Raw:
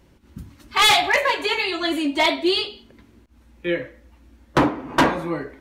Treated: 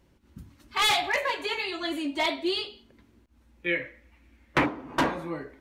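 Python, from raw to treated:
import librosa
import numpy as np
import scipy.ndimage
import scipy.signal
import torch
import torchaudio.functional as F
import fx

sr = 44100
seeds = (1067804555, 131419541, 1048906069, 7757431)

y = fx.peak_eq(x, sr, hz=2200.0, db=13.0, octaves=0.73, at=(3.66, 4.66))
y = y * librosa.db_to_amplitude(-8.0)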